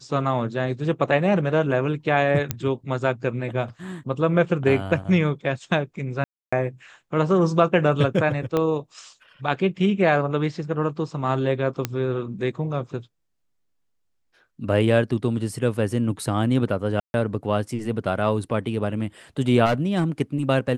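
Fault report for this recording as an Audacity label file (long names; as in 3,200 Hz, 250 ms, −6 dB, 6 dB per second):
2.510000	2.510000	click −8 dBFS
6.240000	6.530000	drop-out 285 ms
8.570000	8.570000	click −11 dBFS
11.850000	11.850000	click −8 dBFS
17.000000	17.140000	drop-out 141 ms
19.650000	20.050000	clipping −16.5 dBFS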